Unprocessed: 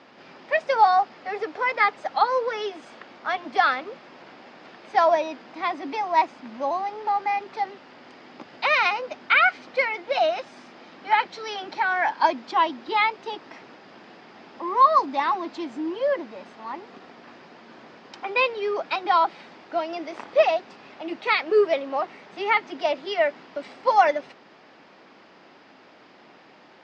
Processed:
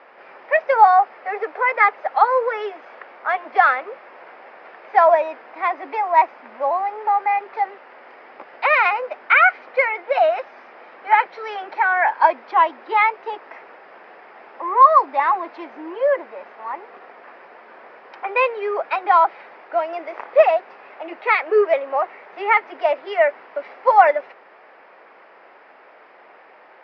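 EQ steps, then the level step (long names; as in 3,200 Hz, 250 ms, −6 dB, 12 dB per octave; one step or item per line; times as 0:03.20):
high-pass filter 170 Hz 12 dB per octave
Butterworth low-pass 5,600 Hz 48 dB per octave
flat-topped bell 1,000 Hz +16 dB 3 octaves
−10.5 dB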